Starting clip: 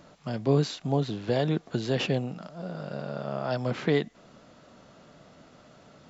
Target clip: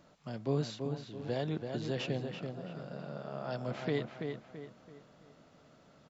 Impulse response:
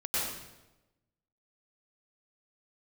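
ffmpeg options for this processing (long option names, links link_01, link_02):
-filter_complex "[0:a]asettb=1/sr,asplit=3[link_01][link_02][link_03];[link_01]atrim=end=0.874[link_04];[link_02]atrim=start=0.87:end=1.29,asetpts=PTS-STARTPTS,afade=type=in:duration=0.004:curve=qsin,afade=type=out:start_time=0.416:duration=0.004:curve=qsin,acompressor=threshold=-34dB:ratio=6[link_05];[link_03]atrim=start=1.286[link_06];[link_04][link_05]acrossfade=duration=0.004:curve1=hsin:curve2=qsin[link_07];[link_07][link_06]acrossfade=duration=0.004:curve1=qsin:curve2=hsin,asplit=2[link_08][link_09];[link_09]adelay=334,lowpass=frequency=3400:poles=1,volume=-5.5dB,asplit=2[link_10][link_11];[link_11]adelay=334,lowpass=frequency=3400:poles=1,volume=0.39,asplit=2[link_12][link_13];[link_13]adelay=334,lowpass=frequency=3400:poles=1,volume=0.39,asplit=2[link_14][link_15];[link_15]adelay=334,lowpass=frequency=3400:poles=1,volume=0.39,asplit=2[link_16][link_17];[link_17]adelay=334,lowpass=frequency=3400:poles=1,volume=0.39[link_18];[link_08][link_10][link_12][link_14][link_16][link_18]amix=inputs=6:normalize=0,volume=-9dB"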